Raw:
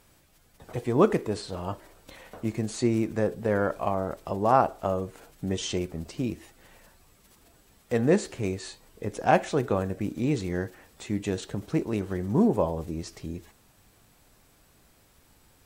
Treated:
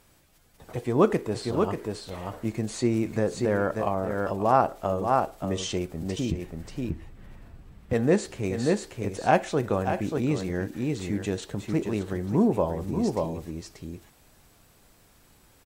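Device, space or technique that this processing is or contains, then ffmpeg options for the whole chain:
ducked delay: -filter_complex "[0:a]asettb=1/sr,asplit=3[s0][s1][s2];[s0]atrim=end=6.314[s3];[s1]atrim=start=6.31:end=7.93,asetpts=PTS-STARTPTS,afade=t=in:d=0.004:c=qsin,afade=t=out:st=1.616:d=0.004:c=qsin,bass=f=250:g=14,treble=f=4000:g=-14[s4];[s2]atrim=start=7.926[s5];[s3][s4]acrossfade=d=0.004:c1=hsin:c2=qsin[s6];[s6][s5]acrossfade=d=0.004:c1=qsin:c2=hsin,asplit=3[s7][s8][s9];[s8]adelay=586,volume=0.75[s10];[s9]apad=whole_len=716032[s11];[s10][s11]sidechaincompress=threshold=0.0251:ratio=8:attack=7:release=114[s12];[s7][s12]amix=inputs=2:normalize=0"

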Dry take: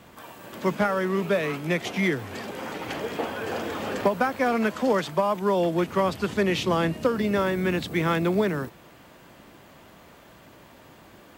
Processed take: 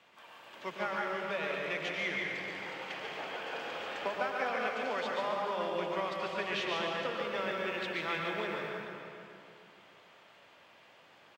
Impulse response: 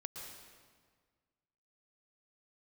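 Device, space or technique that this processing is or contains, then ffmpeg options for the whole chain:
PA in a hall: -filter_complex "[0:a]highpass=110,acrossover=split=450 6800:gain=0.224 1 0.2[s0][s1][s2];[s0][s1][s2]amix=inputs=3:normalize=0,equalizer=f=2700:t=o:w=0.99:g=6.5,aecho=1:1:143:0.501,asplit=2[s3][s4];[s4]adelay=431,lowpass=f=3400:p=1,volume=0.316,asplit=2[s5][s6];[s6]adelay=431,lowpass=f=3400:p=1,volume=0.33,asplit=2[s7][s8];[s8]adelay=431,lowpass=f=3400:p=1,volume=0.33,asplit=2[s9][s10];[s10]adelay=431,lowpass=f=3400:p=1,volume=0.33[s11];[s3][s5][s7][s9][s11]amix=inputs=5:normalize=0[s12];[1:a]atrim=start_sample=2205[s13];[s12][s13]afir=irnorm=-1:irlink=0,volume=0.447"

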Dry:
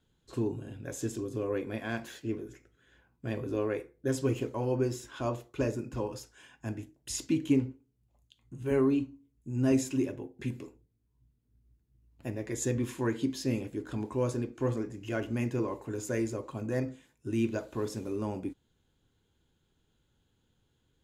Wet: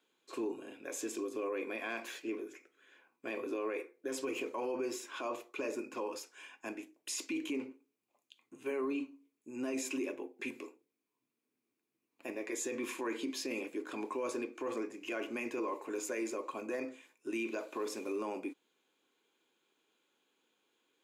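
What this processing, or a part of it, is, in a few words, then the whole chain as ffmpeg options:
laptop speaker: -af "highpass=f=300:w=0.5412,highpass=f=300:w=1.3066,equalizer=f=1100:t=o:w=0.29:g=6,equalizer=f=2400:t=o:w=0.27:g=11,alimiter=level_in=1.78:limit=0.0631:level=0:latency=1:release=27,volume=0.562"

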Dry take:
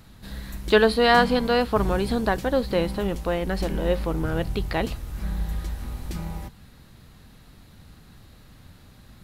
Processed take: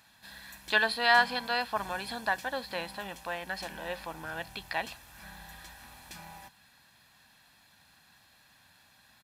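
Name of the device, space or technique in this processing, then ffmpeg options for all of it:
filter by subtraction: -filter_complex "[0:a]aecho=1:1:1.2:0.56,asplit=2[s0][s1];[s1]lowpass=1600,volume=-1[s2];[s0][s2]amix=inputs=2:normalize=0,volume=0.531"

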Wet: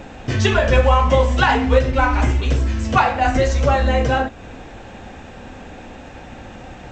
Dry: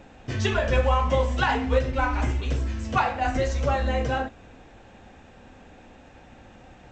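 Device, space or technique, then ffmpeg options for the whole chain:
parallel compression: -filter_complex "[0:a]asplit=2[s0][s1];[s1]acompressor=threshold=0.0141:ratio=6,volume=0.944[s2];[s0][s2]amix=inputs=2:normalize=0,volume=2.11"

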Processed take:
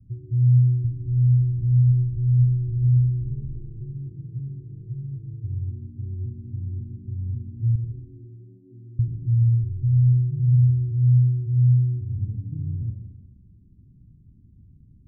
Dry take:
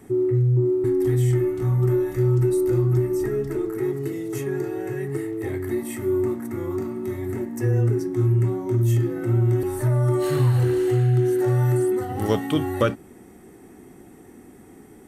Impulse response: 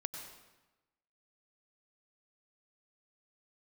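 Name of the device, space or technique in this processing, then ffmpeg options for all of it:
club heard from the street: -filter_complex "[0:a]asettb=1/sr,asplit=3[s0][s1][s2];[s0]atrim=end=7.754[s3];[s1]atrim=start=7.75:end=8.99,asetpts=PTS-STARTPTS,afade=t=in:d=0.004:c=qsin,afade=t=out:st=1.236:d=0.004:c=qsin,highpass=f=270:w=0.5412,highpass=f=270:w=1.3066[s4];[s2]atrim=start=8.986[s5];[s3][s4]acrossfade=d=0.004:c1=hsin:c2=qsin[s6];[s6][s5]acrossfade=d=0.004:c1=qsin:c2=hsin,alimiter=limit=0.141:level=0:latency=1:release=51,lowpass=f=130:w=0.5412,lowpass=f=130:w=1.3066[s7];[1:a]atrim=start_sample=2205[s8];[s7][s8]afir=irnorm=-1:irlink=0,volume=2.51"

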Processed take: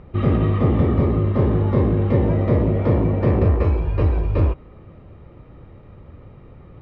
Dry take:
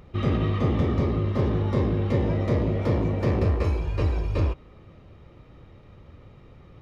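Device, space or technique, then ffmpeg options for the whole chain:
phone in a pocket: -af "lowpass=3300,highshelf=f=2300:g=-9,volume=2"

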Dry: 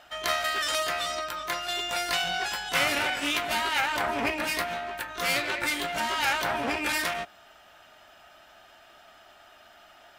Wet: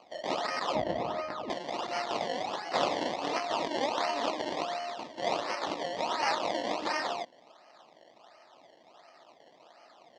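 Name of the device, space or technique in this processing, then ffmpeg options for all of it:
circuit-bent sampling toy: -filter_complex "[0:a]acrusher=samples=24:mix=1:aa=0.000001:lfo=1:lforange=24:lforate=1.4,highpass=400,equalizer=f=410:t=q:w=4:g=-5,equalizer=f=1500:t=q:w=4:g=-10,equalizer=f=2300:t=q:w=4:g=-5,lowpass=f=5300:w=0.5412,lowpass=f=5300:w=1.3066,asettb=1/sr,asplit=3[s0][s1][s2];[s0]atrim=end=0.754[s3];[s1]atrim=start=0.75:end=1.5,asetpts=PTS-STARTPTS,afade=t=in:d=0.004:c=qsin,afade=t=out:st=0.746:d=0.004:c=qsin,aemphasis=mode=reproduction:type=riaa[s4];[s2]atrim=start=1.496[s5];[s3][s4]acrossfade=d=0.004:c1=hsin:c2=qsin[s6];[s6][s5]acrossfade=d=0.004:c1=qsin:c2=hsin"

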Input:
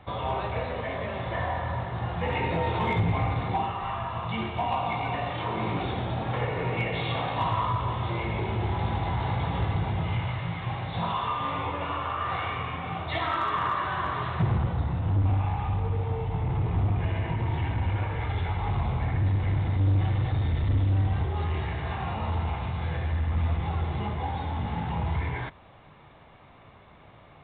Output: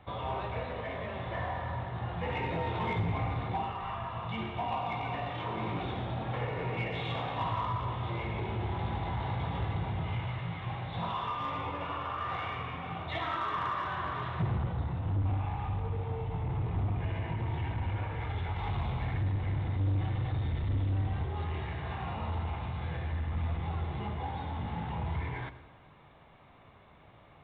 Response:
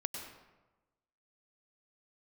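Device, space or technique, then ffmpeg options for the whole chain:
saturated reverb return: -filter_complex "[0:a]asplit=2[s0][s1];[1:a]atrim=start_sample=2205[s2];[s1][s2]afir=irnorm=-1:irlink=0,asoftclip=type=tanh:threshold=0.0562,volume=0.447[s3];[s0][s3]amix=inputs=2:normalize=0,asettb=1/sr,asplit=3[s4][s5][s6];[s4]atrim=end=18.564[s7];[s5]atrim=start=18.56:end=19.23,asetpts=PTS-STARTPTS,afade=t=in:d=0.004:c=qsin,afade=t=out:st=0.666:d=0.004:c=qsin,aemphasis=mode=production:type=75kf[s8];[s6]atrim=start=19.226[s9];[s7][s8]acrossfade=d=0.004:c1=hsin:c2=qsin[s10];[s10][s9]acrossfade=d=0.004:c1=qsin:c2=hsin,volume=0.398"

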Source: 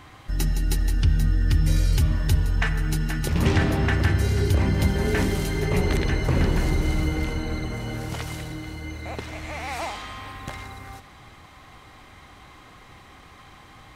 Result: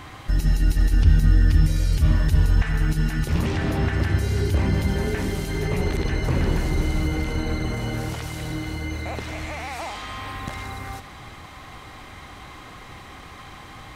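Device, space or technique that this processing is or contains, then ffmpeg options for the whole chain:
de-esser from a sidechain: -filter_complex "[0:a]asplit=2[s0][s1];[s1]highpass=f=5100:p=1,apad=whole_len=615548[s2];[s0][s2]sidechaincompress=threshold=0.00398:ratio=4:attack=3.6:release=24,volume=2.11"

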